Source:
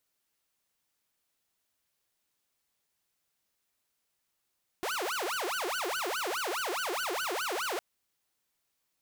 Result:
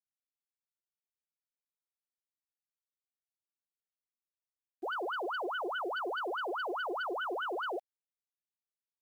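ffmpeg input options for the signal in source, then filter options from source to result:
-f lavfi -i "aevalsrc='0.0376*(2*mod((932.5*t-587.5/(2*PI*4.8)*sin(2*PI*4.8*t)),1)-1)':d=2.96:s=44100"
-af "afftfilt=real='re*gte(hypot(re,im),0.0631)':imag='im*gte(hypot(re,im),0.0631)':win_size=1024:overlap=0.75,acrusher=bits=10:mix=0:aa=0.000001"

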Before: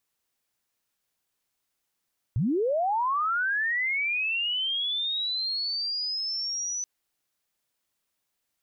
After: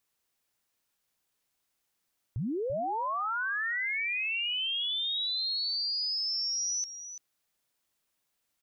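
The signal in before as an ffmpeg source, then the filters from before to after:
-f lavfi -i "aevalsrc='pow(10,(-22-6.5*t/4.48)/20)*sin(2*PI*(94*t+5906*t*t/(2*4.48)))':d=4.48:s=44100"
-filter_complex "[0:a]alimiter=level_in=5dB:limit=-24dB:level=0:latency=1,volume=-5dB,asplit=2[a][b];[b]aecho=0:1:338:0.282[c];[a][c]amix=inputs=2:normalize=0"

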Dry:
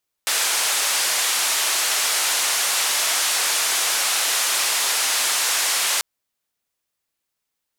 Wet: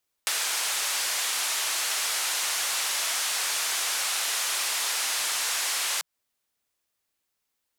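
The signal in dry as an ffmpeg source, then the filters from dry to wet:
-f lavfi -i "anoisesrc=c=white:d=5.74:r=44100:seed=1,highpass=f=680,lowpass=f=10000,volume=-12.5dB"
-filter_complex "[0:a]equalizer=f=160:t=o:w=0.21:g=-7.5,acrossover=split=760|6500[a][b][c];[a]acompressor=threshold=-49dB:ratio=4[d];[b]acompressor=threshold=-29dB:ratio=4[e];[c]acompressor=threshold=-32dB:ratio=4[f];[d][e][f]amix=inputs=3:normalize=0"

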